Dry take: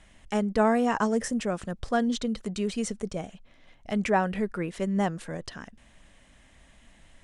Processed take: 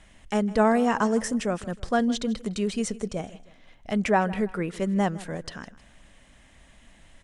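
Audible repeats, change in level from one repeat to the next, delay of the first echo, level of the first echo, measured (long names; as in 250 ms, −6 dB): 2, −7.5 dB, 158 ms, −19.0 dB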